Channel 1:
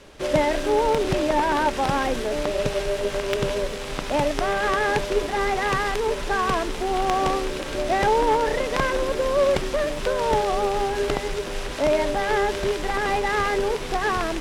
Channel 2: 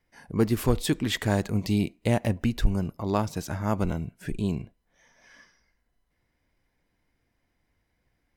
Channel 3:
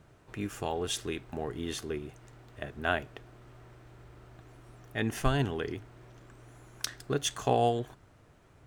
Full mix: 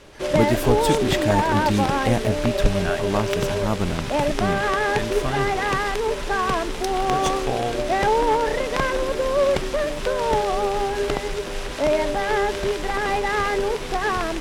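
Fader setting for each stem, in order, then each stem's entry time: +0.5, +2.5, +0.5 decibels; 0.00, 0.00, 0.00 seconds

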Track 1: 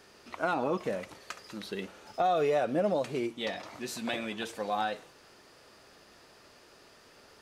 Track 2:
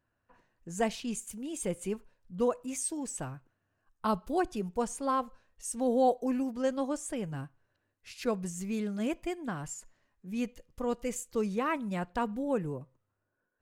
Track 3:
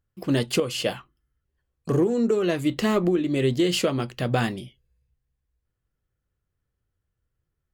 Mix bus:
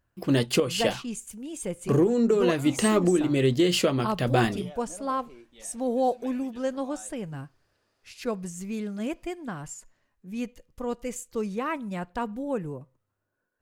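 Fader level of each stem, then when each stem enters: −18.0, +1.0, 0.0 decibels; 2.15, 0.00, 0.00 seconds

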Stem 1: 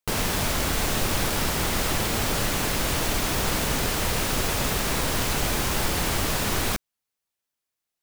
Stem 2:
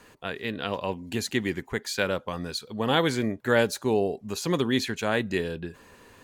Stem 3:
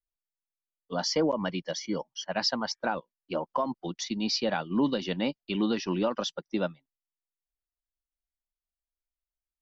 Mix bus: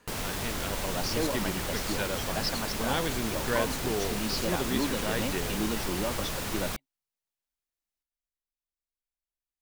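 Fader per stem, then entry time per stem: −8.5, −7.5, −5.0 decibels; 0.00, 0.00, 0.00 seconds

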